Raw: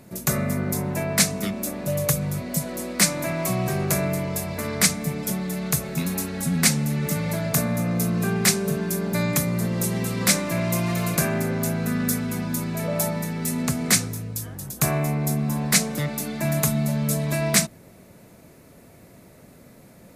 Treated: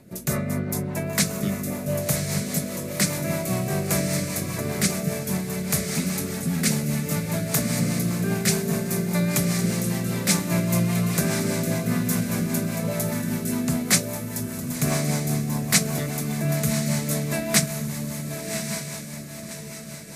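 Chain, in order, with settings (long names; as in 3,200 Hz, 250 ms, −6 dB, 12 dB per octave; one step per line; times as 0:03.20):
feedback delay with all-pass diffusion 1,120 ms, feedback 47%, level −5 dB
rotating-speaker cabinet horn 5 Hz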